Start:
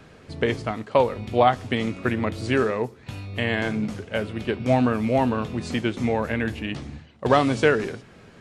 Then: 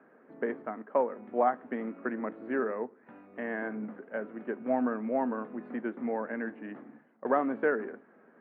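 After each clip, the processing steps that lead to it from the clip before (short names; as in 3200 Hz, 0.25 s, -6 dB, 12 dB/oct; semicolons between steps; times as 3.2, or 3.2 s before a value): elliptic band-pass 230–1700 Hz, stop band 50 dB; gain -8 dB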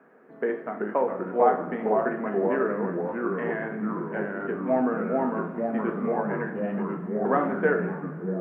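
short-mantissa float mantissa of 8-bit; echoes that change speed 0.33 s, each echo -2 st, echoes 3; two-slope reverb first 0.52 s, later 2.5 s, from -15 dB, DRR 3.5 dB; gain +2.5 dB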